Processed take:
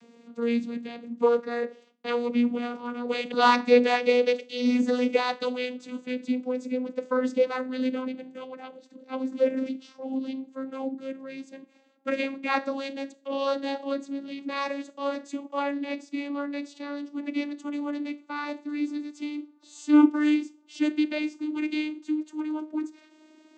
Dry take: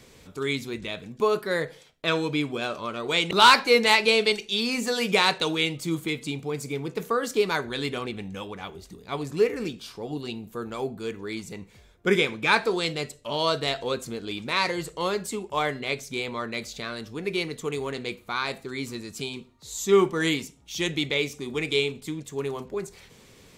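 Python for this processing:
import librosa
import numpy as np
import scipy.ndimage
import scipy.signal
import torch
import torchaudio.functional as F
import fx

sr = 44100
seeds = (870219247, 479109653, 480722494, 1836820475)

y = fx.vocoder_glide(x, sr, note=58, semitones=5)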